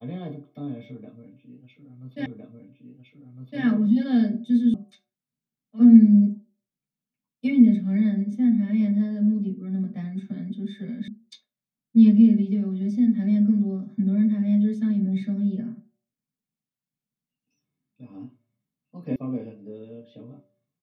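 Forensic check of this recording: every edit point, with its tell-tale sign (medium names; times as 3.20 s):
2.26 s: repeat of the last 1.36 s
4.74 s: sound stops dead
11.08 s: sound stops dead
19.16 s: sound stops dead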